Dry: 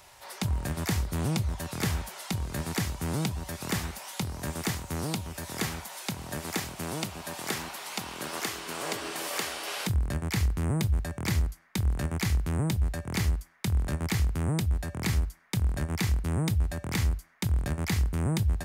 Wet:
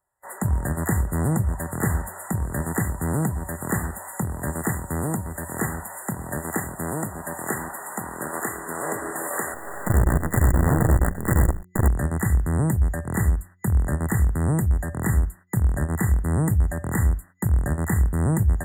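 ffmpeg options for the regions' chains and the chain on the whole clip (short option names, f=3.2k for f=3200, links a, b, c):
-filter_complex "[0:a]asettb=1/sr,asplit=3[a][b][c];[a]atrim=end=9.544[d];[b]atrim=start=9.54:end=11.88,asetpts=PTS-STARTPTS,afade=t=in:d=0.004:c=qsin,afade=t=out:st=2.336:d=0.004:c=qsin,aemphasis=mode=reproduction:type=50fm,aecho=1:1:104:0.596,atrim=end_sample=103194,acrusher=bits=5:dc=4:mix=0:aa=0.000001[e];[c]atrim=start=11.876[f];[d][e]acrossfade=d=0.004:c1=hsin:c2=qsin[g];[g][f]acrossfade=d=0.004:c1=qsin:c2=hsin,agate=range=-31dB:threshold=-46dB:ratio=16:detection=peak,afftfilt=real='re*(1-between(b*sr/4096,2000,6900))':imag='im*(1-between(b*sr/4096,2000,6900))':win_size=4096:overlap=0.75,bandreject=f=90.77:t=h:w=4,bandreject=f=181.54:t=h:w=4,bandreject=f=272.31:t=h:w=4,bandreject=f=363.08:t=h:w=4,volume=6.5dB"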